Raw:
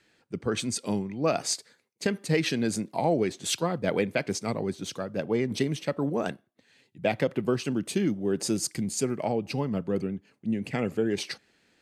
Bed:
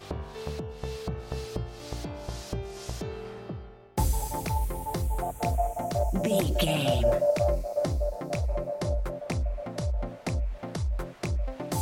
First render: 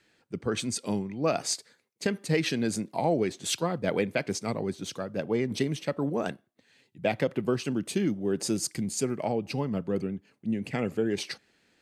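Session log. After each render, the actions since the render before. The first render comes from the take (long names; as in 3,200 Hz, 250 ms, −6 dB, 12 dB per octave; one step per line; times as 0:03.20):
level −1 dB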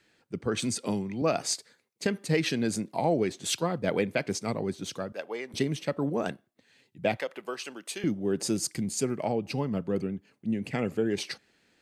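0:00.62–0:01.22: multiband upward and downward compressor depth 70%
0:05.12–0:05.54: high-pass filter 640 Hz
0:07.17–0:08.04: high-pass filter 680 Hz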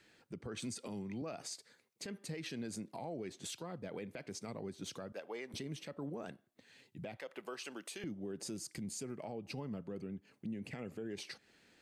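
downward compressor 3 to 1, threshold −42 dBFS, peak gain reduction 16 dB
brickwall limiter −34 dBFS, peak gain reduction 9 dB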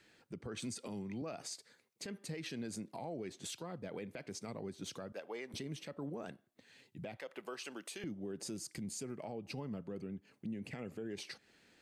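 no processing that can be heard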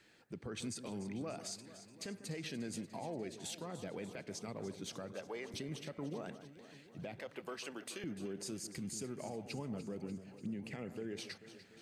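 delay that swaps between a low-pass and a high-pass 147 ms, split 1,800 Hz, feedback 80%, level −11.5 dB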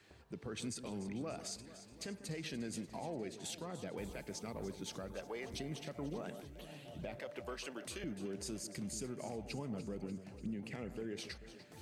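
mix in bed −28 dB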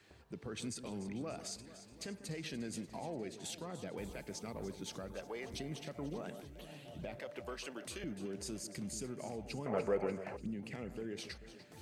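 0:09.66–0:10.37: flat-topped bell 1,000 Hz +15.5 dB 2.9 octaves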